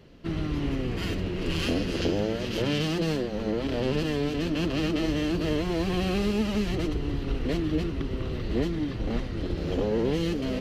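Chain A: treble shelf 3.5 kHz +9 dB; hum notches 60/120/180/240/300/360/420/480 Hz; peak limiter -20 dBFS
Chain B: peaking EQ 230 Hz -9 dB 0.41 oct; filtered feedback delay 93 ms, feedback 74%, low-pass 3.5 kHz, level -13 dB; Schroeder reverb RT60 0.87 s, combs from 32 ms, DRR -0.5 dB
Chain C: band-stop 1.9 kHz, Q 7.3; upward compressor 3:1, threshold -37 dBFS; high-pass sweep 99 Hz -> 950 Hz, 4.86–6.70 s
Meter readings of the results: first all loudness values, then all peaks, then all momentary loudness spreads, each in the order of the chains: -30.0 LUFS, -26.5 LUFS, -27.0 LUFS; -20.0 dBFS, -11.5 dBFS, -12.5 dBFS; 3 LU, 5 LU, 16 LU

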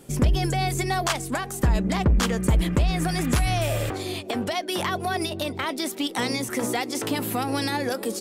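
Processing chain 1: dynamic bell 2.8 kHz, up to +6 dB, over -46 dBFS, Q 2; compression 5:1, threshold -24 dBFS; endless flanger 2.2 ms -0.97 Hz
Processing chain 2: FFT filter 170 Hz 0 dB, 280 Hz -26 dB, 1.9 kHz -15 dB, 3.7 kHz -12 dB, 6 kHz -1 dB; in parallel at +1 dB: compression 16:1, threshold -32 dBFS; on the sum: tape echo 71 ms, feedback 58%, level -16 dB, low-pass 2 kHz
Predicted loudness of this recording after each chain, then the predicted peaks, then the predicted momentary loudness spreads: -31.0 LUFS, -26.5 LUFS; -16.0 dBFS, -9.5 dBFS; 3 LU, 9 LU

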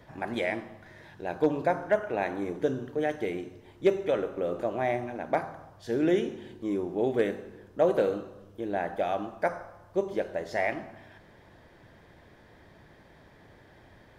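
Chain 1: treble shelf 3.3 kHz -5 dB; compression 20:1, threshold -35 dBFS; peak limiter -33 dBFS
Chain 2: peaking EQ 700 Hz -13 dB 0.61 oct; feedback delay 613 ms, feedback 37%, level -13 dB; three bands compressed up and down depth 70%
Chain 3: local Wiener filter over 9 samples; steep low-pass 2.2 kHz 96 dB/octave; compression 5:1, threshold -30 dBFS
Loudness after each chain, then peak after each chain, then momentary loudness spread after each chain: -44.5 LUFS, -35.0 LUFS, -36.5 LUFS; -33.0 dBFS, -16.0 dBFS, -17.5 dBFS; 14 LU, 11 LU, 20 LU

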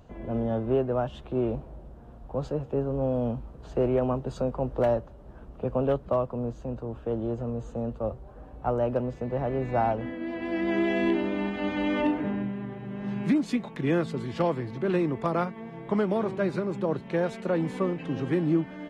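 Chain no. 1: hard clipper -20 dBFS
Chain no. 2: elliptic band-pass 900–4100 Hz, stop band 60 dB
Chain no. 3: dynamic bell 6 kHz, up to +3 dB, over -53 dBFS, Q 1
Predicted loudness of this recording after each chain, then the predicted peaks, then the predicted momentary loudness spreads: -29.5 LUFS, -40.0 LUFS, -29.0 LUFS; -20.0 dBFS, -19.5 dBFS, -13.5 dBFS; 9 LU, 18 LU, 10 LU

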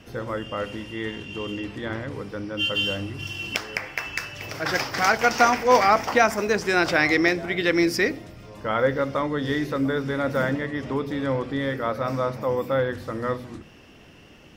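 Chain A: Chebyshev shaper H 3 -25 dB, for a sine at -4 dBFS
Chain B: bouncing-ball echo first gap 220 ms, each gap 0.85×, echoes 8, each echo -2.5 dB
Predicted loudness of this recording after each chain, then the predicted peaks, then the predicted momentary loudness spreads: -25.5 LUFS, -20.5 LUFS; -4.0 dBFS, -2.0 dBFS; 13 LU, 12 LU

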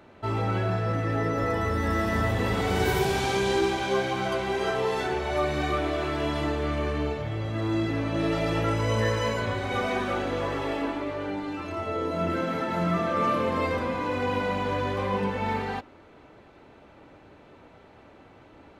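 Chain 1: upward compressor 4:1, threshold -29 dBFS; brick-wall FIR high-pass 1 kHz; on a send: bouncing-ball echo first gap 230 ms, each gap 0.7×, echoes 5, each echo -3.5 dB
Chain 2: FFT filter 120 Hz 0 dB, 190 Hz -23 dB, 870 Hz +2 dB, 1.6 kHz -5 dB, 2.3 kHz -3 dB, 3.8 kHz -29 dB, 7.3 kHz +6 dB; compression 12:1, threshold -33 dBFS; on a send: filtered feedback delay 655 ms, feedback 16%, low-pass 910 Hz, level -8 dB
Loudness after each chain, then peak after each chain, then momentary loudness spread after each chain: -31.0 LUFS, -37.0 LUFS; -16.5 dBFS, -24.0 dBFS; 15 LU, 18 LU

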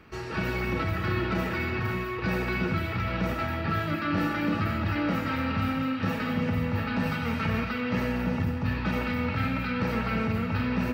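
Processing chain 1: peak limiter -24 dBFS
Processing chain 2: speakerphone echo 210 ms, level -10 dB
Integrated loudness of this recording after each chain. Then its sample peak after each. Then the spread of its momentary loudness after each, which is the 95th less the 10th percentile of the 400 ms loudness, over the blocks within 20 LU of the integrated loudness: -32.5 LUFS, -28.5 LUFS; -24.0 dBFS, -16.5 dBFS; 1 LU, 2 LU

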